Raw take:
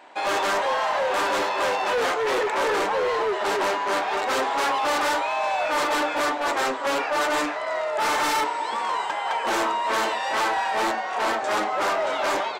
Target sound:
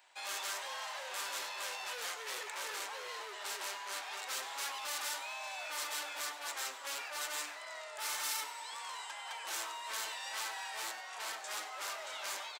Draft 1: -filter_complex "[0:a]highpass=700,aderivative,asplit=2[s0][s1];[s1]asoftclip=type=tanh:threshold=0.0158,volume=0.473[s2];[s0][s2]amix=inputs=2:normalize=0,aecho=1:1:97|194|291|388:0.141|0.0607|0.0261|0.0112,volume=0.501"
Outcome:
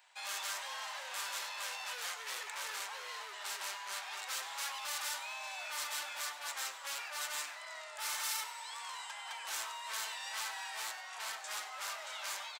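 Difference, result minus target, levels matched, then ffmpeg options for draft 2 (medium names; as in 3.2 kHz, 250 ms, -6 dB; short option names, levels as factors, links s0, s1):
250 Hz band -9.0 dB
-filter_complex "[0:a]highpass=260,aderivative,asplit=2[s0][s1];[s1]asoftclip=type=tanh:threshold=0.0158,volume=0.473[s2];[s0][s2]amix=inputs=2:normalize=0,aecho=1:1:97|194|291|388:0.141|0.0607|0.0261|0.0112,volume=0.501"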